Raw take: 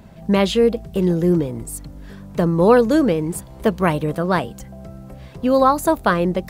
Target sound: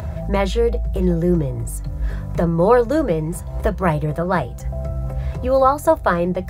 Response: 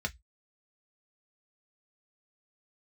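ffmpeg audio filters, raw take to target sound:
-filter_complex "[0:a]equalizer=frequency=250:width_type=o:width=0.5:gain=-12.5,acompressor=mode=upward:threshold=-22dB:ratio=2.5,asplit=2[link_01][link_02];[1:a]atrim=start_sample=2205,lowshelf=frequency=130:gain=11.5[link_03];[link_02][link_03]afir=irnorm=-1:irlink=0,volume=-7.5dB[link_04];[link_01][link_04]amix=inputs=2:normalize=0,volume=-2.5dB"

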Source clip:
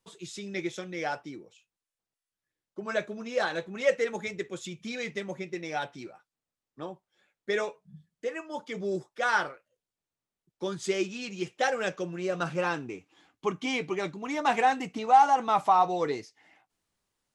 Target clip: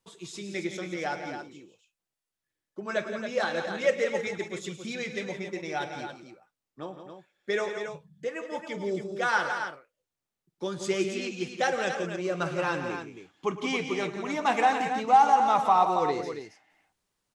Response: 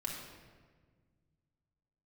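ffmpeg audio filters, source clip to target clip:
-af "aecho=1:1:49|109|145|171|274:0.112|0.168|0.112|0.335|0.398"

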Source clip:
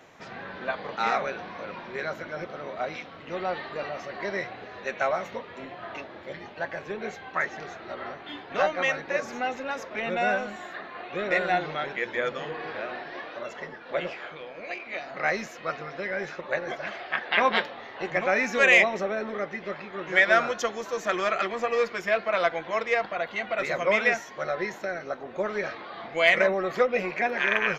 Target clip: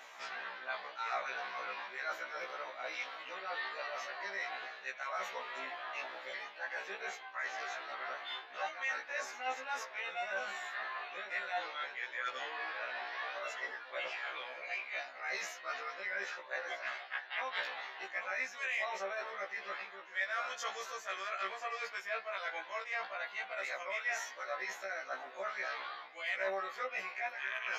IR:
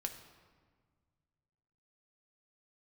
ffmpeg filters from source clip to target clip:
-af "highpass=910,areverse,acompressor=threshold=-42dB:ratio=4,areverse,afftfilt=real='re*1.73*eq(mod(b,3),0)':imag='im*1.73*eq(mod(b,3),0)':win_size=2048:overlap=0.75,volume=6dB"

